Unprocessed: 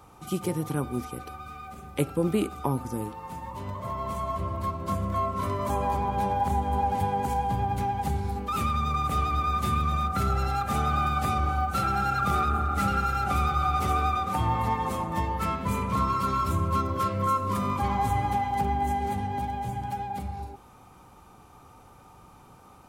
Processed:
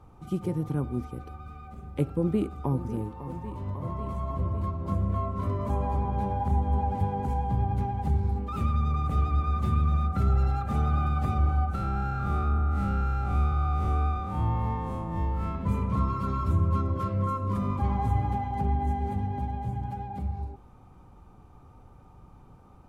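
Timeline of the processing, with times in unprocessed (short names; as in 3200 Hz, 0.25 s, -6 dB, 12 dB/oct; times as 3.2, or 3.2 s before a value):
2.13–2.88 echo throw 0.55 s, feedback 80%, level -13 dB
11.75–15.55 time blur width 0.101 s
whole clip: tilt -3 dB/oct; gain -6.5 dB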